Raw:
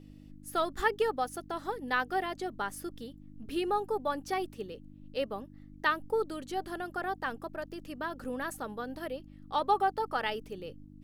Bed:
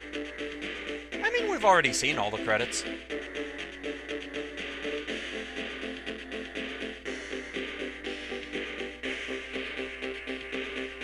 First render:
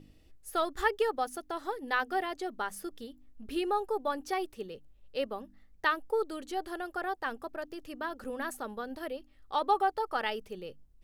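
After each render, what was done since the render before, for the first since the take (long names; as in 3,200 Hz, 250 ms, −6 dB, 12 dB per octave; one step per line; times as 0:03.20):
hum removal 50 Hz, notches 6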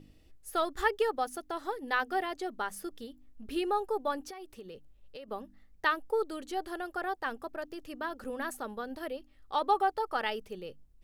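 0:04.28–0:05.28: downward compressor 16 to 1, threshold −41 dBFS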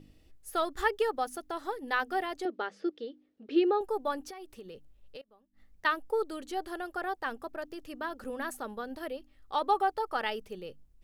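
0:02.45–0:03.81: loudspeaker in its box 270–4,700 Hz, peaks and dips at 330 Hz +10 dB, 490 Hz +9 dB, 990 Hz −6 dB
0:05.21–0:05.85: gate with flip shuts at −42 dBFS, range −24 dB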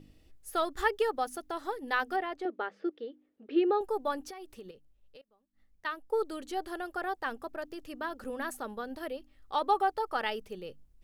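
0:02.16–0:03.70: bass and treble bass −5 dB, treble −15 dB
0:04.71–0:06.12: clip gain −7.5 dB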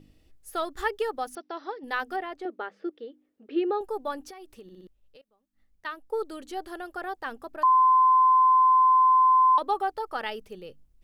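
0:01.35–0:01.84: linear-phase brick-wall band-pass 160–6,000 Hz
0:04.63: stutter in place 0.06 s, 4 plays
0:07.63–0:09.58: beep over 1,030 Hz −15.5 dBFS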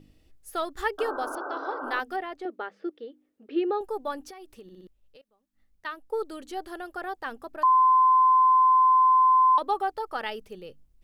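0:00.98–0:02.00: sound drawn into the spectrogram noise 270–1,600 Hz −35 dBFS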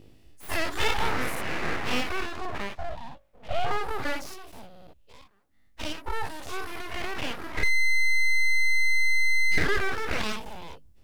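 every bin's largest magnitude spread in time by 120 ms
full-wave rectification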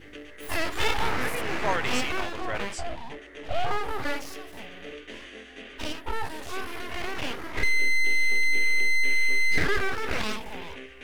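mix in bed −7.5 dB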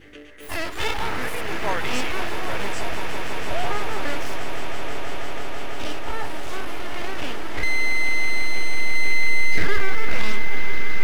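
echo that builds up and dies away 165 ms, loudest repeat 8, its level −12.5 dB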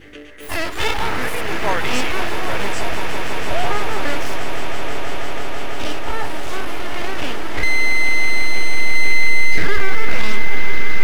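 level +5 dB
brickwall limiter −2 dBFS, peak gain reduction 2.5 dB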